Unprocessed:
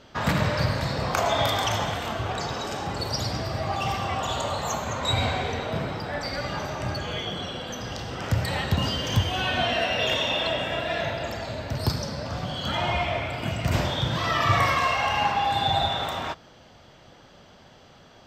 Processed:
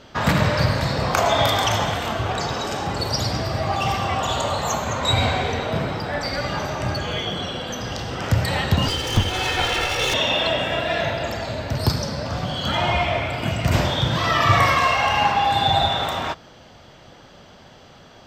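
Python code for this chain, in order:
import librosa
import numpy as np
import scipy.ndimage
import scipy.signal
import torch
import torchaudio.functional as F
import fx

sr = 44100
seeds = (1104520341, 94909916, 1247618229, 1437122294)

y = fx.lower_of_two(x, sr, delay_ms=2.3, at=(8.88, 10.14))
y = F.gain(torch.from_numpy(y), 5.0).numpy()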